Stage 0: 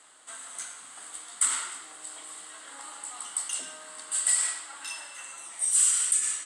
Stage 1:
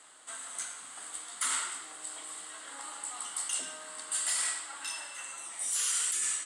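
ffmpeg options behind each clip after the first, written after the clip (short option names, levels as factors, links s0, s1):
-af "afftfilt=real='re*lt(hypot(re,im),0.126)':imag='im*lt(hypot(re,im),0.126)':win_size=1024:overlap=0.75"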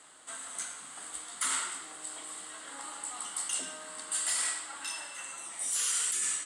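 -af "lowshelf=f=320:g=7.5"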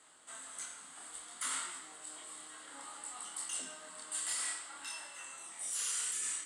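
-af "flanger=delay=22.5:depth=7.2:speed=0.58,volume=0.708"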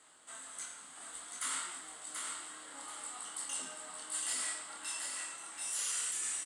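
-af "aecho=1:1:734|1468|2202|2936:0.596|0.191|0.061|0.0195"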